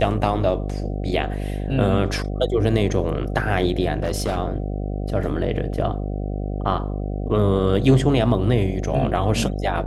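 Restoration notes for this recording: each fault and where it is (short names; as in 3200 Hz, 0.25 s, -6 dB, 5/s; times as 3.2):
buzz 50 Hz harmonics 15 -26 dBFS
3.94–4.38 clipped -17.5 dBFS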